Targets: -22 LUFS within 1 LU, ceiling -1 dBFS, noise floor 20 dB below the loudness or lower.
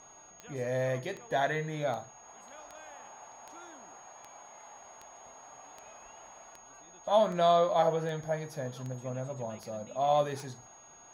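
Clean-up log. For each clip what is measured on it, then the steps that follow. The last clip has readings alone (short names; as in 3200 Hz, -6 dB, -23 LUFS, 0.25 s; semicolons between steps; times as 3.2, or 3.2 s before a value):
clicks 14; steady tone 6600 Hz; tone level -54 dBFS; loudness -31.0 LUFS; peak -14.5 dBFS; loudness target -22.0 LUFS
-> de-click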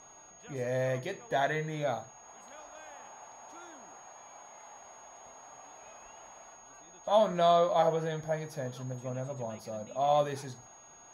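clicks 0; steady tone 6600 Hz; tone level -54 dBFS
-> notch 6600 Hz, Q 30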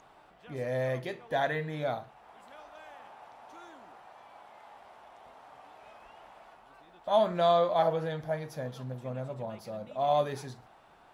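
steady tone none; loudness -31.0 LUFS; peak -14.5 dBFS; loudness target -22.0 LUFS
-> gain +9 dB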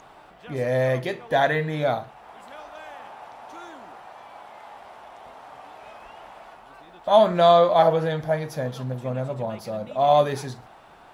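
loudness -22.0 LUFS; peak -5.5 dBFS; noise floor -49 dBFS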